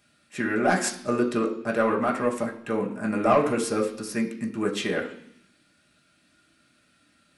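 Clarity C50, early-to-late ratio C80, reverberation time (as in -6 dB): 10.0 dB, 13.5 dB, 0.65 s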